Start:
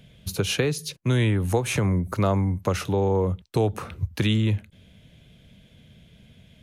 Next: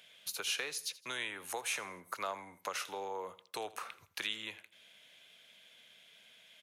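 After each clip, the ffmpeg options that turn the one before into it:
-af "highpass=1k,acompressor=threshold=-49dB:ratio=1.5,aecho=1:1:81|162|243:0.119|0.0464|0.0181,volume=1dB"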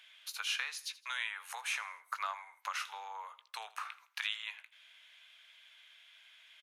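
-filter_complex "[0:a]highpass=f=970:w=0.5412,highpass=f=970:w=1.3066,highshelf=f=4.7k:g=-12,asplit=2[a][b];[b]adelay=18,volume=-14dB[c];[a][c]amix=inputs=2:normalize=0,volume=4dB"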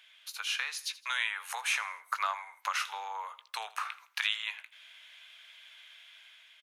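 -af "dynaudnorm=f=260:g=5:m=6dB"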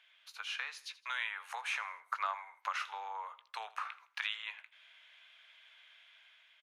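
-af "aemphasis=mode=reproduction:type=75kf,volume=-2.5dB"

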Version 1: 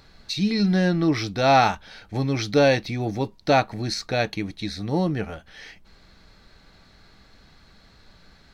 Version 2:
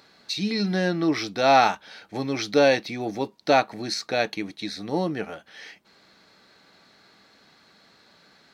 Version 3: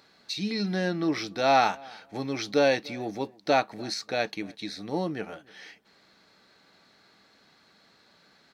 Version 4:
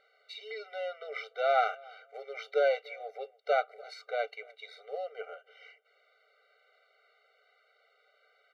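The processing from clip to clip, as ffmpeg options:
-af "highpass=240"
-filter_complex "[0:a]asplit=2[a][b];[b]adelay=292,lowpass=f=2k:p=1,volume=-24dB,asplit=2[c][d];[d]adelay=292,lowpass=f=2k:p=1,volume=0.22[e];[a][c][e]amix=inputs=3:normalize=0,volume=-4dB"
-af "highshelf=f=4k:t=q:w=1.5:g=-12.5,afftfilt=real='re*eq(mod(floor(b*sr/1024/390),2),1)':imag='im*eq(mod(floor(b*sr/1024/390),2),1)':win_size=1024:overlap=0.75,volume=-3.5dB"

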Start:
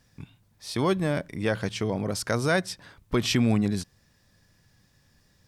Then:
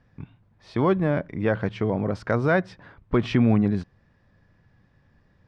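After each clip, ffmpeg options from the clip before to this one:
-af "lowpass=1.8k,volume=3.5dB"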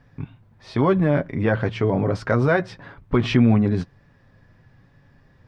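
-filter_complex "[0:a]asplit=2[a][b];[b]alimiter=limit=-20dB:level=0:latency=1:release=20,volume=3dB[c];[a][c]amix=inputs=2:normalize=0,flanger=delay=6.9:depth=1.2:regen=-41:speed=1:shape=triangular,volume=2.5dB"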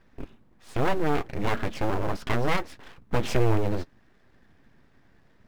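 -filter_complex "[0:a]aeval=exprs='abs(val(0))':c=same,asplit=2[a][b];[b]acrusher=bits=4:mode=log:mix=0:aa=0.000001,volume=-11.5dB[c];[a][c]amix=inputs=2:normalize=0,volume=-5.5dB"

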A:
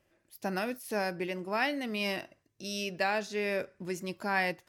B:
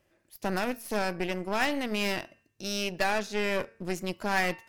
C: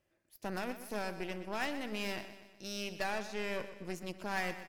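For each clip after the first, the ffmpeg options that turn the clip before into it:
-af "bandreject=f=227:t=h:w=4,bandreject=f=454:t=h:w=4,bandreject=f=681:t=h:w=4,bandreject=f=908:t=h:w=4,bandreject=f=1.135k:t=h:w=4,bandreject=f=1.362k:t=h:w=4,bandreject=f=1.589k:t=h:w=4,bandreject=f=1.816k:t=h:w=4,bandreject=f=2.043k:t=h:w=4,bandreject=f=2.27k:t=h:w=4,bandreject=f=2.497k:t=h:w=4,bandreject=f=2.724k:t=h:w=4,bandreject=f=2.951k:t=h:w=4,aeval=exprs='0.141*(cos(1*acos(clip(val(0)/0.141,-1,1)))-cos(1*PI/2))+0.0158*(cos(8*acos(clip(val(0)/0.141,-1,1)))-cos(8*PI/2))':c=same,volume=2dB"
-af "aecho=1:1:123|246|369|492|615:0.237|0.126|0.0666|0.0353|0.0187,volume=-9dB"

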